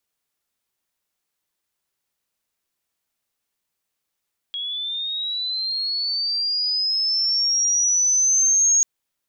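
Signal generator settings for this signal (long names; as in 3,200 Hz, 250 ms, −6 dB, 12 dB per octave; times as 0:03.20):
glide linear 3,300 Hz → 6,600 Hz −25.5 dBFS → −13.5 dBFS 4.29 s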